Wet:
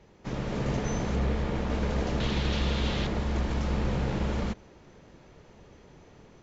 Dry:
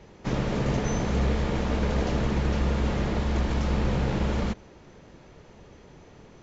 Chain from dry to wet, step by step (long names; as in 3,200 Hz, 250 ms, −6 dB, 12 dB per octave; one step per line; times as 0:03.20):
0:02.20–0:03.07: parametric band 3,600 Hz +12.5 dB 1.1 octaves
automatic gain control gain up to 4 dB
0:01.15–0:01.70: high-shelf EQ 4,800 Hz −6 dB
level −7 dB